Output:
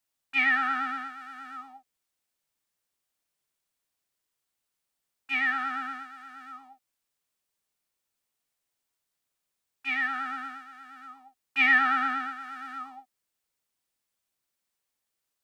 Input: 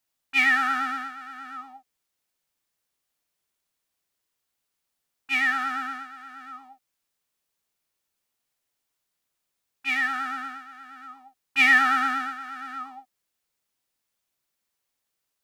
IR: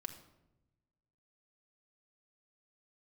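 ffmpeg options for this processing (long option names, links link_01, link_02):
-filter_complex "[0:a]equalizer=frequency=8400:width_type=o:width=0.23:gain=2.5,acrossover=split=290|700|3900[link_01][link_02][link_03][link_04];[link_04]acompressor=threshold=-58dB:ratio=5[link_05];[link_01][link_02][link_03][link_05]amix=inputs=4:normalize=0,volume=-3dB"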